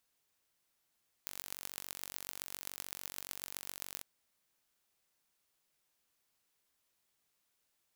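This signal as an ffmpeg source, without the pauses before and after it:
-f lavfi -i "aevalsrc='0.251*eq(mod(n,938),0)*(0.5+0.5*eq(mod(n,5628),0))':d=2.76:s=44100"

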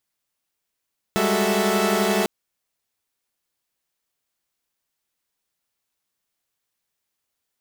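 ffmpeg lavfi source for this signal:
-f lavfi -i "aevalsrc='0.075*((2*mod(196*t,1)-1)+(2*mod(207.65*t,1)-1)+(2*mod(369.99*t,1)-1)+(2*mod(440*t,1)-1)+(2*mod(659.26*t,1)-1))':d=1.1:s=44100"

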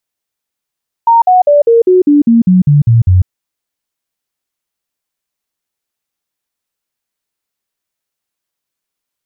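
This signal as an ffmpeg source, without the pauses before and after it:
-f lavfi -i "aevalsrc='0.668*clip(min(mod(t,0.2),0.15-mod(t,0.2))/0.005,0,1)*sin(2*PI*925*pow(2,-floor(t/0.2)/3)*mod(t,0.2))':d=2.2:s=44100"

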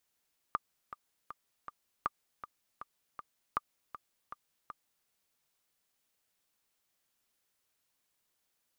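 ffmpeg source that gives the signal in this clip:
-f lavfi -i "aevalsrc='pow(10,(-17-13*gte(mod(t,4*60/159),60/159))/20)*sin(2*PI*1200*mod(t,60/159))*exp(-6.91*mod(t,60/159)/0.03)':d=4.52:s=44100"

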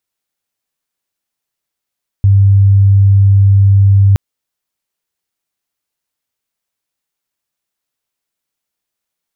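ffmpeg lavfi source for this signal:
-f lavfi -i "aevalsrc='0.631*sin(2*PI*98.8*t)':d=1.92:s=44100"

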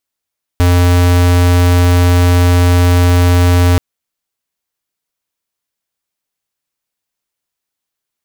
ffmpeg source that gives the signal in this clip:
-f lavfi -i "aevalsrc='0.376*(2*lt(mod(88.4*t,1),0.5)-1)':d=3.18:s=44100"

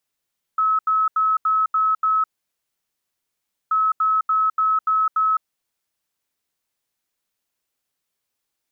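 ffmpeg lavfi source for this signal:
-f lavfi -i "aevalsrc='0.168*sin(2*PI*1290*t)*clip(min(mod(mod(t,3.13),0.29),0.21-mod(mod(t,3.13),0.29))/0.005,0,1)*lt(mod(t,3.13),1.74)':d=6.26:s=44100"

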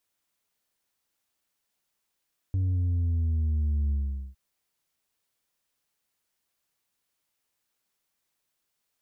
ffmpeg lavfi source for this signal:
-f lavfi -i "aevalsrc='0.0668*clip((1.81-t)/0.44,0,1)*tanh(1.5*sin(2*PI*95*1.81/log(65/95)*(exp(log(65/95)*t/1.81)-1)))/tanh(1.5)':d=1.81:s=44100"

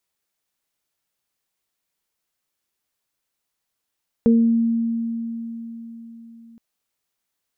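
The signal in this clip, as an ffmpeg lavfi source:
-f lavfi -i "aevalsrc='0.282*pow(10,-3*t/4.24)*sin(2*PI*230*t)+0.158*pow(10,-3*t/0.46)*sin(2*PI*460*t)':d=2.32:s=44100"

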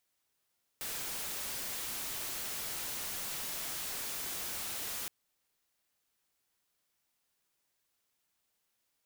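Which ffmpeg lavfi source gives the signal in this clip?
-f lavfi -i "anoisesrc=c=white:a=0.0194:d=4.27:r=44100:seed=1"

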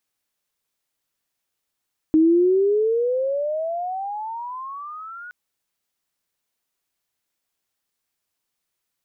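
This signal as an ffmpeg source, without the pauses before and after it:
-f lavfi -i "aevalsrc='pow(10,(-11.5-23*t/3.17)/20)*sin(2*PI*310*3.17/(27*log(2)/12)*(exp(27*log(2)/12*t/3.17)-1))':d=3.17:s=44100"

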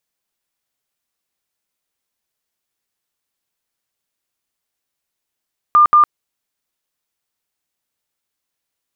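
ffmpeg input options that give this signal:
-f lavfi -i "aevalsrc='0.501*sin(2*PI*1200*mod(t,0.18))*lt(mod(t,0.18),130/1200)':d=0.36:s=44100"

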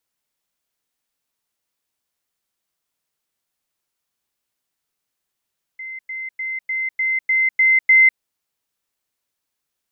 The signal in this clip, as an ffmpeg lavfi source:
-f lavfi -i "aevalsrc='pow(10,(-29+3*floor(t/0.3))/20)*sin(2*PI*2070*t)*clip(min(mod(t,0.3),0.2-mod(t,0.3))/0.005,0,1)':d=2.4:s=44100"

